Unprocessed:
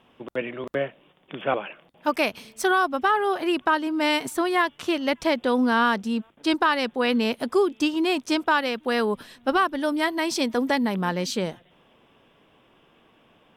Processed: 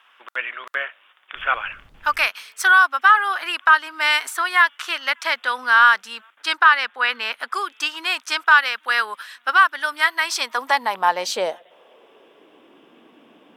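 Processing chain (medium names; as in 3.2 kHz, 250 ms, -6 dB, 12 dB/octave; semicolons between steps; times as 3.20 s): high-pass sweep 1.4 kHz -> 270 Hz, 10.21–12.86 s; 1.35–2.26 s: added noise brown -53 dBFS; 6.55–7.54 s: tone controls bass +1 dB, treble -7 dB; trim +4.5 dB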